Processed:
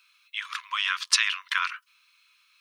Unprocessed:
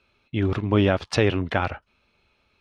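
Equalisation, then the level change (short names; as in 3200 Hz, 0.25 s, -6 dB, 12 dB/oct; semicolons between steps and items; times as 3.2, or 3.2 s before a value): brick-wall FIR high-pass 960 Hz; tilt +2.5 dB/oct; high shelf 5800 Hz +9.5 dB; 0.0 dB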